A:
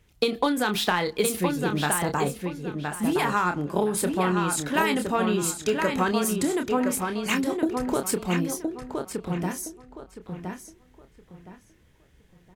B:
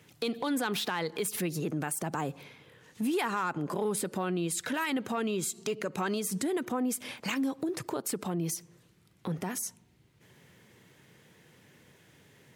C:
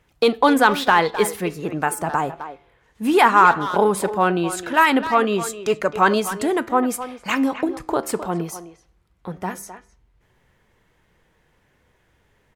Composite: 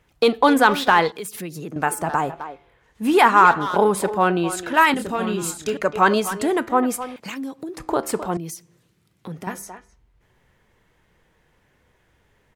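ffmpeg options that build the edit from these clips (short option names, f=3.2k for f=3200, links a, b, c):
-filter_complex "[1:a]asplit=3[a][b][c];[2:a]asplit=5[d][e][f][g][h];[d]atrim=end=1.122[i];[a]atrim=start=1.118:end=1.762[j];[e]atrim=start=1.758:end=4.942[k];[0:a]atrim=start=4.938:end=5.772[l];[f]atrim=start=5.768:end=7.162[m];[b]atrim=start=7.158:end=7.782[n];[g]atrim=start=7.778:end=8.372[o];[c]atrim=start=8.368:end=9.472[p];[h]atrim=start=9.468[q];[i][j]acrossfade=d=0.004:c1=hsin:c2=hsin[r];[r][k]acrossfade=d=0.004:c1=hsin:c2=hsin[s];[s][l]acrossfade=d=0.004:c1=hsin:c2=hsin[t];[t][m]acrossfade=d=0.004:c1=hsin:c2=hsin[u];[u][n]acrossfade=d=0.004:c1=hsin:c2=hsin[v];[v][o]acrossfade=d=0.004:c1=hsin:c2=hsin[w];[w][p]acrossfade=d=0.004:c1=hsin:c2=hsin[x];[x][q]acrossfade=d=0.004:c1=hsin:c2=hsin"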